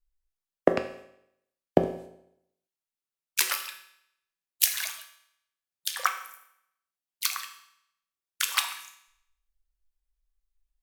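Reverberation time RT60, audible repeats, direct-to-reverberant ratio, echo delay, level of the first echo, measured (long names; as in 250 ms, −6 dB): 0.75 s, no echo audible, 5.5 dB, no echo audible, no echo audible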